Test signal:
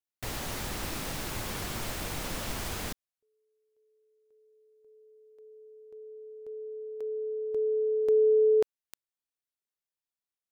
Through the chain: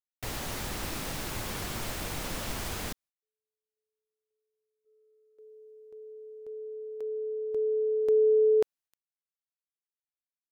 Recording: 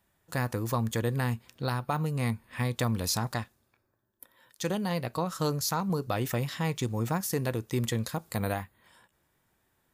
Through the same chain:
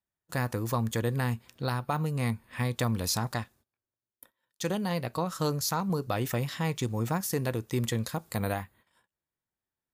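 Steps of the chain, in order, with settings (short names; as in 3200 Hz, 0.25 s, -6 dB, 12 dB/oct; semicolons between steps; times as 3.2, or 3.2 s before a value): gate -57 dBFS, range -21 dB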